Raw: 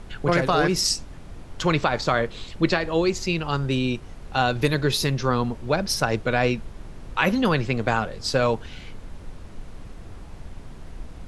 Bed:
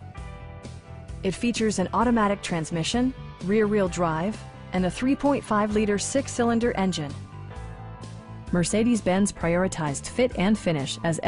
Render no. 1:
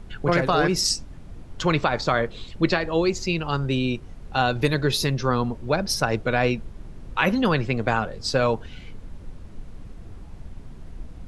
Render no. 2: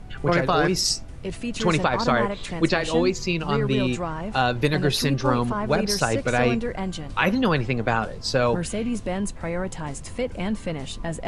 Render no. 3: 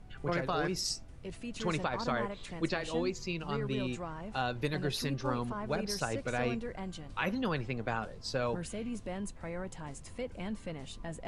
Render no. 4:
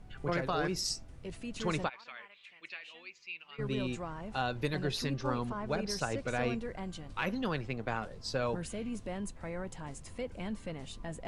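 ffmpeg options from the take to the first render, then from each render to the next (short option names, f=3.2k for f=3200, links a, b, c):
-af "afftdn=nr=6:nf=-41"
-filter_complex "[1:a]volume=-5dB[a];[0:a][a]amix=inputs=2:normalize=0"
-af "volume=-12dB"
-filter_complex "[0:a]asplit=3[a][b][c];[a]afade=t=out:st=1.88:d=0.02[d];[b]bandpass=f=2.5k:t=q:w=3.6,afade=t=in:st=1.88:d=0.02,afade=t=out:st=3.58:d=0.02[e];[c]afade=t=in:st=3.58:d=0.02[f];[d][e][f]amix=inputs=3:normalize=0,asettb=1/sr,asplit=3[g][h][i];[g]atrim=end=4.794[j];[h]atrim=start=4.79:end=6.3,asetpts=PTS-STARTPTS,afade=t=in:d=0.004:c=qsin,afade=t=out:st=1.506:d=0.004:c=qsin,lowpass=9.4k[k];[i]atrim=start=6.296[l];[j][k]acrossfade=d=0.004:c1=hsin:c2=qsin[m];[m][l]acrossfade=d=0.004:c1=qsin:c2=hsin,asettb=1/sr,asplit=3[n][o][p];[n]atrim=end=7.134[q];[o]atrim=start=7.13:end=8.11,asetpts=PTS-STARTPTS,afade=t=in:d=0.004:c=qsin,afade=t=out:st=0.976:d=0.004:c=qsin,aeval=exprs='if(lt(val(0),0),0.708*val(0),val(0))':c=same[r];[p]atrim=start=8.106[s];[q][r]acrossfade=d=0.004:c1=hsin:c2=qsin[t];[t][s]acrossfade=d=0.004:c1=qsin:c2=hsin"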